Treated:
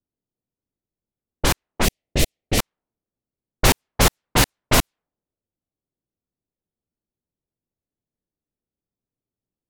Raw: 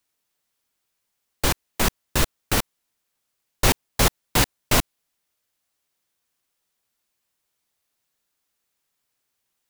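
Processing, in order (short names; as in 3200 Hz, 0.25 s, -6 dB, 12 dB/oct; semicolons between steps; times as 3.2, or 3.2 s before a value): low-pass opened by the level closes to 320 Hz, open at -16.5 dBFS; 1.85–2.59 band shelf 1200 Hz -15 dB 1.1 oct; gain +3 dB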